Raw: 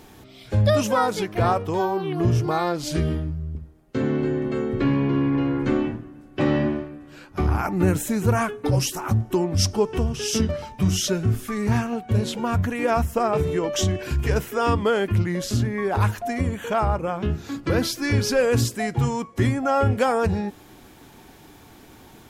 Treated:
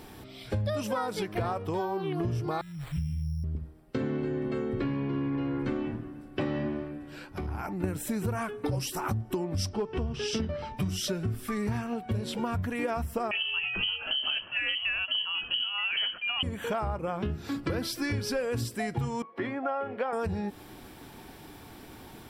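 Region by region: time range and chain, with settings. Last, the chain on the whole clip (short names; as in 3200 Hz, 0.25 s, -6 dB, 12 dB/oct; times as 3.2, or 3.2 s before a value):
2.61–3.44 Chebyshev band-stop 150–3100 Hz, order 3 + air absorption 390 m + careless resampling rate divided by 8×, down none, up hold
6.91–7.84 notch 1200 Hz + compressor 3:1, threshold -34 dBFS
9.69–10.77 LPF 4400 Hz + overloaded stage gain 13.5 dB
13.31–16.43 inverted band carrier 3100 Hz + notch 2100 Hz, Q 8.1
19.22–20.13 HPF 410 Hz + air absorption 390 m
whole clip: notch 6600 Hz, Q 5.6; compressor, threshold -28 dBFS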